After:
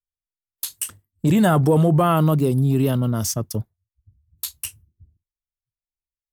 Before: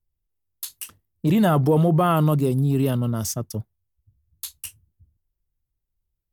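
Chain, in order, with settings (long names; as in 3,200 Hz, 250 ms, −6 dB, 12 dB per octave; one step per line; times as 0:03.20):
noise reduction from a noise print of the clip's start 26 dB
0:00.74–0:02.02: thirty-one-band graphic EQ 100 Hz +5 dB, 1,600 Hz +3 dB, 8,000 Hz +11 dB
in parallel at −1 dB: downward compressor, threshold −29 dBFS, peak gain reduction 14 dB
on the sum: pitch vibrato 1.4 Hz 43 cents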